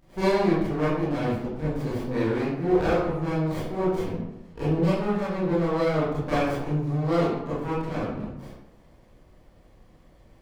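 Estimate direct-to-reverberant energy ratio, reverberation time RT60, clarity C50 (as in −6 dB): −11.5 dB, 0.90 s, −2.0 dB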